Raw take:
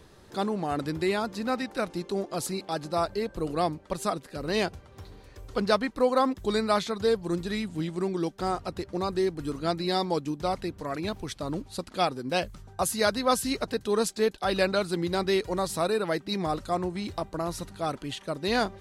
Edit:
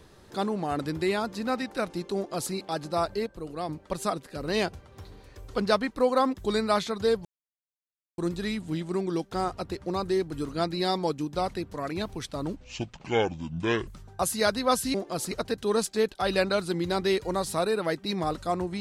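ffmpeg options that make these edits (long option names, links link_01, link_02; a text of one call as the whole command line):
ffmpeg -i in.wav -filter_complex "[0:a]asplit=8[link_01][link_02][link_03][link_04][link_05][link_06][link_07][link_08];[link_01]atrim=end=3.262[link_09];[link_02]atrim=start=3.258:end=3.692,asetpts=PTS-STARTPTS,volume=-7dB[link_10];[link_03]atrim=start=3.688:end=7.25,asetpts=PTS-STARTPTS,afade=type=out:start_time=3.558:duration=0.004:curve=hsin,apad=pad_dur=0.93[link_11];[link_04]atrim=start=7.25:end=11.634,asetpts=PTS-STARTPTS,afade=type=in:duration=0.004:curve=hsin[link_12];[link_05]atrim=start=11.63:end=12.47,asetpts=PTS-STARTPTS,asetrate=28224,aresample=44100,atrim=end_sample=57881,asetpts=PTS-STARTPTS[link_13];[link_06]atrim=start=12.466:end=13.542[link_14];[link_07]atrim=start=2.158:end=2.532[link_15];[link_08]atrim=start=13.538[link_16];[link_09][link_10]acrossfade=duration=0.004:curve1=hsin:curve2=hsin[link_17];[link_11][link_12]concat=n=2:v=0:a=1[link_18];[link_17][link_18]acrossfade=duration=0.004:curve1=hsin:curve2=hsin[link_19];[link_19][link_13]acrossfade=duration=0.004:curve1=hsin:curve2=hsin[link_20];[link_20][link_14]acrossfade=duration=0.004:curve1=hsin:curve2=hsin[link_21];[link_21][link_15]acrossfade=duration=0.004:curve1=hsin:curve2=hsin[link_22];[link_22][link_16]acrossfade=duration=0.004:curve1=hsin:curve2=hsin" out.wav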